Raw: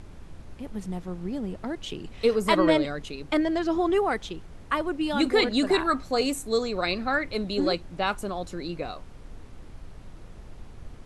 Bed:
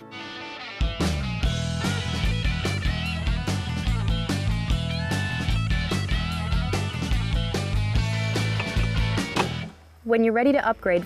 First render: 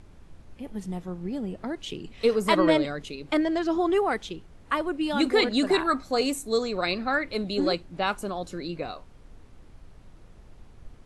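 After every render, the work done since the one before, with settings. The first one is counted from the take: noise print and reduce 6 dB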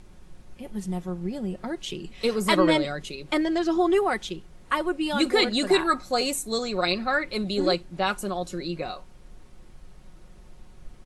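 treble shelf 4.5 kHz +6 dB; comb 5.5 ms, depth 46%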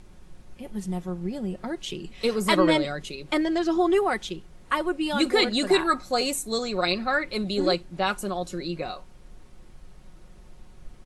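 no audible change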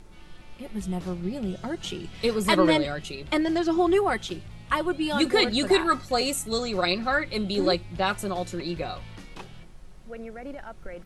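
add bed -19 dB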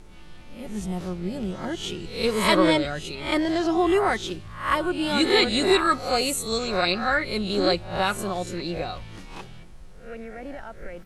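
reverse spectral sustain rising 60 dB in 0.45 s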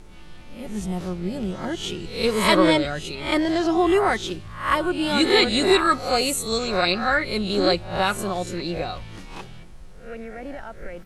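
trim +2 dB

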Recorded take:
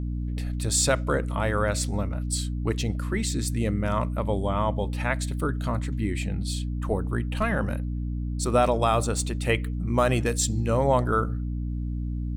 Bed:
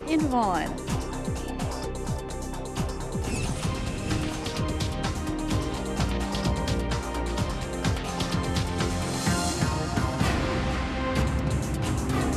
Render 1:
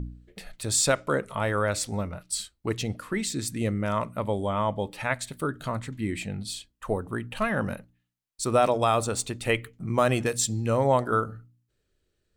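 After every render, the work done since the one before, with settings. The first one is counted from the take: de-hum 60 Hz, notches 5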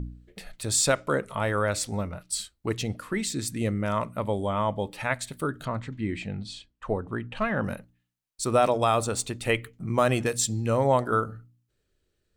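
5.65–7.64 s: distance through air 110 m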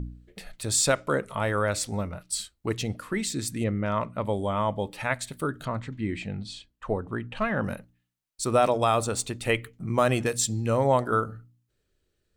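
3.63–4.23 s: low-pass 3 kHz -> 5.5 kHz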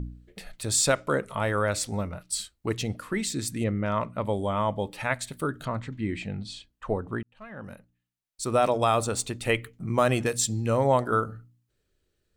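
7.23–8.82 s: fade in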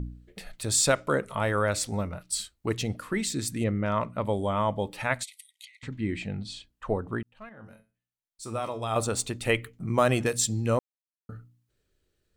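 5.23–5.83 s: brick-wall FIR band-pass 1.9–13 kHz; 7.49–8.96 s: feedback comb 110 Hz, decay 0.3 s, mix 80%; 10.79–11.29 s: mute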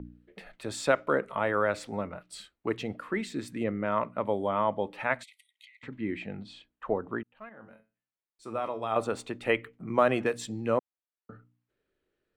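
three-band isolator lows -14 dB, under 200 Hz, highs -18 dB, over 3 kHz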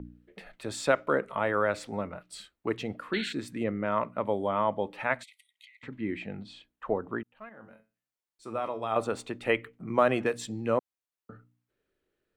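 3.13–3.33 s: painted sound noise 1.4–4.4 kHz -37 dBFS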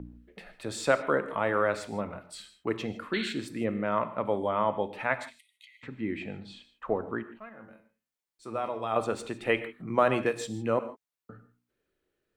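gated-style reverb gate 180 ms flat, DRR 11 dB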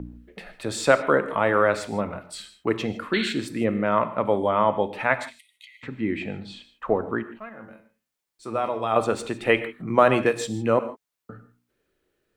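trim +6.5 dB

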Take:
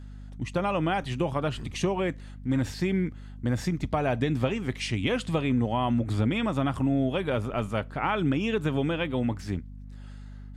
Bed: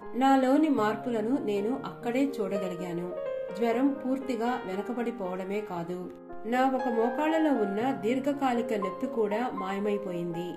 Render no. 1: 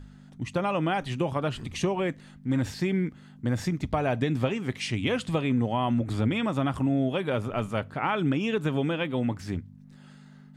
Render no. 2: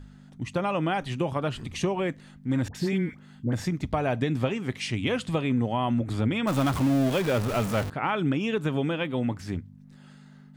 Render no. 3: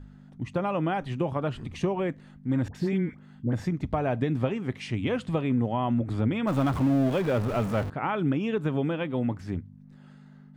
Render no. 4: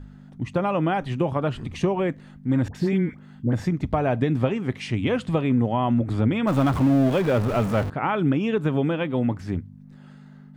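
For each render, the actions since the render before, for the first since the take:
de-hum 50 Hz, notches 2
2.68–3.53 s: phase dispersion highs, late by 68 ms, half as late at 1 kHz; 6.47–7.90 s: jump at every zero crossing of -27.5 dBFS
treble shelf 2.6 kHz -11.5 dB
trim +4.5 dB

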